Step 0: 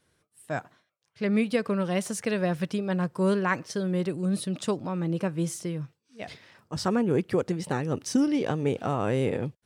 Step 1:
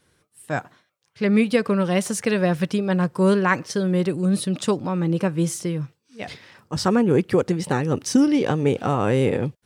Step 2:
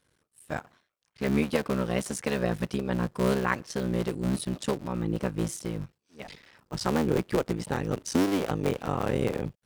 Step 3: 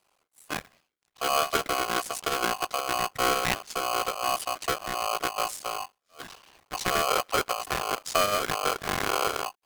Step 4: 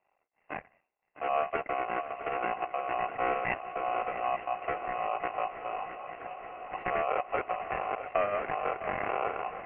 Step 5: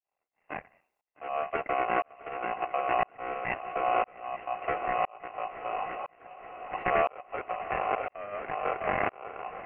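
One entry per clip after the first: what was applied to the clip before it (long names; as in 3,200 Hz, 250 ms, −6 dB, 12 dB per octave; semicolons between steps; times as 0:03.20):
notch filter 650 Hz, Q 12; level +6.5 dB
sub-harmonics by changed cycles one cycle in 3, muted; level −6 dB
ring modulator with a square carrier 910 Hz
Chebyshev low-pass with heavy ripple 2,800 Hz, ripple 9 dB; feedback echo with a long and a short gap by turns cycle 876 ms, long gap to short 3 to 1, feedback 72%, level −13 dB
shaped tremolo saw up 0.99 Hz, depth 100%; level +6 dB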